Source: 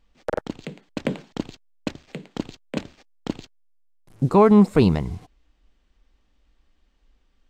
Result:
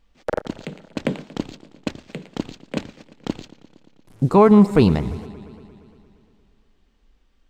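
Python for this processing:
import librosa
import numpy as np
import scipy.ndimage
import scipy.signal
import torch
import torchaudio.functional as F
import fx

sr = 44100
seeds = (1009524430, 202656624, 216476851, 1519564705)

y = fx.echo_warbled(x, sr, ms=116, feedback_pct=74, rate_hz=2.8, cents=121, wet_db=-19.0)
y = y * 10.0 ** (2.0 / 20.0)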